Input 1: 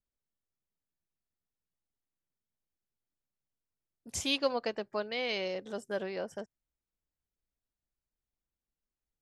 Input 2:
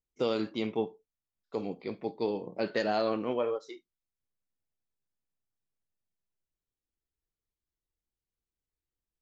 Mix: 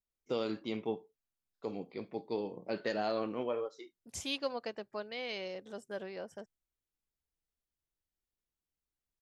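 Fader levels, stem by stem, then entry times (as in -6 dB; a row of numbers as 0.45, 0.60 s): -6.0, -5.0 dB; 0.00, 0.10 s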